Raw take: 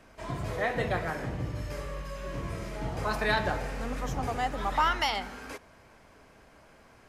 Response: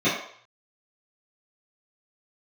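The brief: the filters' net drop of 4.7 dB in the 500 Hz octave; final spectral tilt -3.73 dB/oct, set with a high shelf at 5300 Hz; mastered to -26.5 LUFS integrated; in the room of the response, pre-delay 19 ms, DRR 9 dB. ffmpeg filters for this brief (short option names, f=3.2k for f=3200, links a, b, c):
-filter_complex "[0:a]equalizer=f=500:t=o:g=-6,highshelf=f=5.3k:g=-6,asplit=2[a][b];[1:a]atrim=start_sample=2205,adelay=19[c];[b][c]afir=irnorm=-1:irlink=0,volume=-26dB[d];[a][d]amix=inputs=2:normalize=0,volume=6dB"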